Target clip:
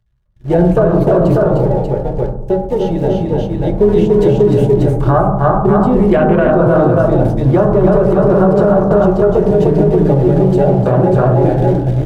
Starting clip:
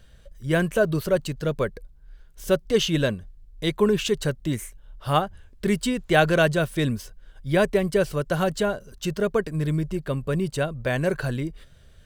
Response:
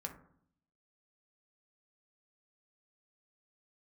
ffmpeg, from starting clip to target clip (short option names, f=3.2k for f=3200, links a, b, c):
-filter_complex "[0:a]aeval=exprs='val(0)+0.5*0.0668*sgn(val(0))':c=same,lowpass=f=2.4k:p=1,aecho=1:1:302|338|588:0.668|0.299|0.631,asoftclip=type=hard:threshold=-11dB,afwtdn=0.0891,agate=range=-41dB:threshold=-23dB:ratio=16:detection=peak,asettb=1/sr,asplit=3[a][b][c];[a]atrim=end=1.584[d];[b]atrim=start=1.58:end=3.8,asetpts=PTS-STARTPTS,afade=t=in:d=0.004:c=qsin,afade=t=out:st=2.216:d=0.004:c=qsin,acompressor=threshold=-24dB:ratio=6[e];[c]atrim=start=3.796[f];[d][e]acrossfade=d=0.004:c1=hsin:c2=qsin[g];[g][f]acrossfade=d=0.004:c1=qsin:c2=hsin,lowshelf=f=370:g=-7.5[h];[1:a]atrim=start_sample=2205,asetrate=31752,aresample=44100[i];[h][i]afir=irnorm=-1:irlink=0,acrossover=split=250|1300[j][k][l];[j]acompressor=threshold=-26dB:ratio=4[m];[k]acompressor=threshold=-23dB:ratio=4[n];[l]acompressor=threshold=-48dB:ratio=4[o];[m][n][o]amix=inputs=3:normalize=0,alimiter=level_in=17dB:limit=-1dB:release=50:level=0:latency=1,volume=-1dB"